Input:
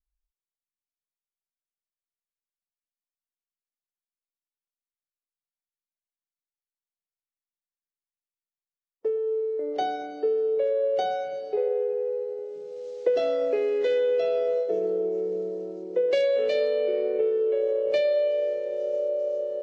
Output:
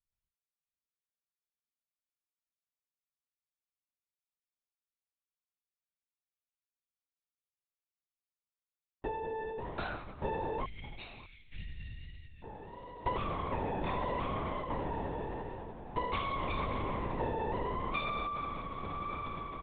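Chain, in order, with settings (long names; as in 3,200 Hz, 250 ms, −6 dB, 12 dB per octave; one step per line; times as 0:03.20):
lower of the sound and its delayed copy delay 0.81 ms
0:10.65–0:12.44: elliptic band-stop filter 110–2,300 Hz, stop band 40 dB
single-tap delay 602 ms −19 dB
linear-prediction vocoder at 8 kHz whisper
level −6.5 dB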